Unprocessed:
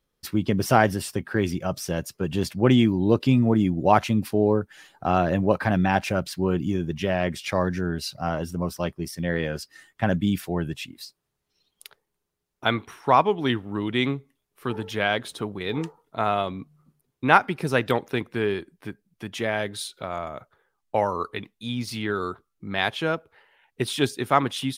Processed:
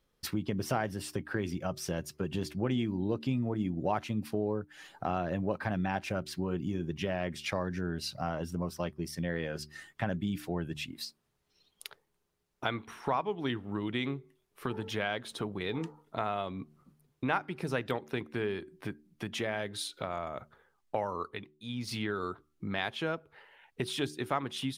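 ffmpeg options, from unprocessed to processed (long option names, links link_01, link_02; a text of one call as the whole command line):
ffmpeg -i in.wav -filter_complex "[0:a]asplit=3[link_01][link_02][link_03];[link_01]atrim=end=21.48,asetpts=PTS-STARTPTS,afade=type=out:start_time=21.15:duration=0.33:silence=0.281838[link_04];[link_02]atrim=start=21.48:end=21.68,asetpts=PTS-STARTPTS,volume=-11dB[link_05];[link_03]atrim=start=21.68,asetpts=PTS-STARTPTS,afade=type=in:duration=0.33:silence=0.281838[link_06];[link_04][link_05][link_06]concat=n=3:v=0:a=1,highshelf=frequency=7900:gain=-5,acompressor=threshold=-37dB:ratio=2.5,bandreject=frequency=75.21:width_type=h:width=4,bandreject=frequency=150.42:width_type=h:width=4,bandreject=frequency=225.63:width_type=h:width=4,bandreject=frequency=300.84:width_type=h:width=4,bandreject=frequency=376.05:width_type=h:width=4,volume=2dB" out.wav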